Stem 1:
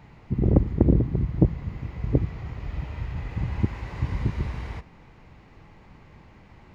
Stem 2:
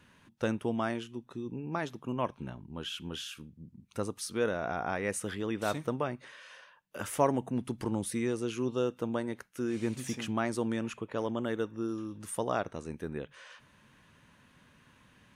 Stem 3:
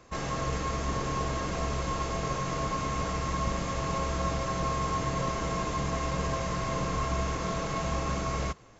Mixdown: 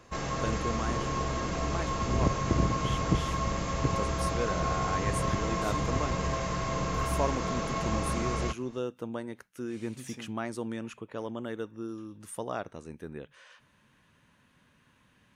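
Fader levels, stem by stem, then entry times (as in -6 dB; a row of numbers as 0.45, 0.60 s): -9.0, -3.5, -0.5 dB; 1.70, 0.00, 0.00 s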